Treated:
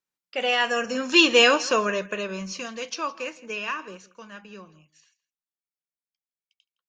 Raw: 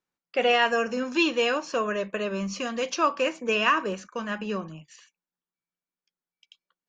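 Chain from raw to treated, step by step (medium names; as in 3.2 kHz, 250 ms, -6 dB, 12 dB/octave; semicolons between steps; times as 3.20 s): Doppler pass-by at 1.47 s, 8 m/s, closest 2.5 m; treble shelf 2.1 kHz +8 dB; on a send: delay 164 ms -21 dB; on the sum: trim +6 dB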